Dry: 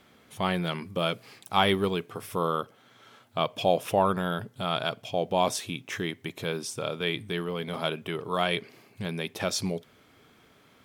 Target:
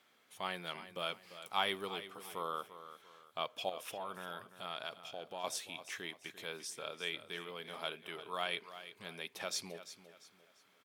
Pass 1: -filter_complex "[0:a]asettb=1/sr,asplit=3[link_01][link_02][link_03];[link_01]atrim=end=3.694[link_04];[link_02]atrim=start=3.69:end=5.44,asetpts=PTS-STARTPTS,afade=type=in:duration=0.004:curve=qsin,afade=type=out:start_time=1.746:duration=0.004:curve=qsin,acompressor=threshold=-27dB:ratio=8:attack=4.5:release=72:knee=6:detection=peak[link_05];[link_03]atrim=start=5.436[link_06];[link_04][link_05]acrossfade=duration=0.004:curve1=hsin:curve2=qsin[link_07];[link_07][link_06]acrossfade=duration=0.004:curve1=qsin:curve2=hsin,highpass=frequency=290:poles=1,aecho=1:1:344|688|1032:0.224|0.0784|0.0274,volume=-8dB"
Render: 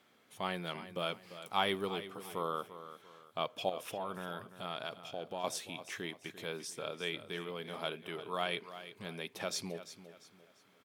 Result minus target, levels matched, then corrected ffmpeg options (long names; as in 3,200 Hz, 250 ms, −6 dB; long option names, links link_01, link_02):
250 Hz band +5.5 dB
-filter_complex "[0:a]asettb=1/sr,asplit=3[link_01][link_02][link_03];[link_01]atrim=end=3.694[link_04];[link_02]atrim=start=3.69:end=5.44,asetpts=PTS-STARTPTS,afade=type=in:duration=0.004:curve=qsin,afade=type=out:start_time=1.746:duration=0.004:curve=qsin,acompressor=threshold=-27dB:ratio=8:attack=4.5:release=72:knee=6:detection=peak[link_05];[link_03]atrim=start=5.436[link_06];[link_04][link_05]acrossfade=duration=0.004:curve1=hsin:curve2=qsin[link_07];[link_07][link_06]acrossfade=duration=0.004:curve1=qsin:curve2=hsin,highpass=frequency=890:poles=1,aecho=1:1:344|688|1032:0.224|0.0784|0.0274,volume=-8dB"